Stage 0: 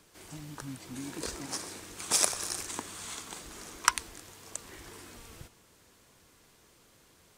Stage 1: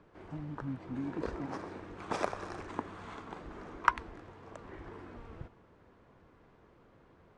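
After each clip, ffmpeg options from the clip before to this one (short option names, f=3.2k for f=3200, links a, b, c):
-af "lowpass=1.3k,volume=3.5dB"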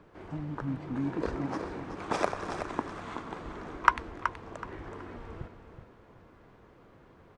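-af "aecho=1:1:375|750|1125:0.355|0.0887|0.0222,volume=4.5dB"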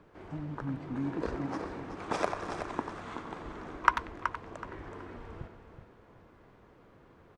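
-filter_complex "[0:a]asplit=2[a][b];[b]adelay=90,highpass=300,lowpass=3.4k,asoftclip=type=hard:threshold=-11dB,volume=-9dB[c];[a][c]amix=inputs=2:normalize=0,volume=-2dB"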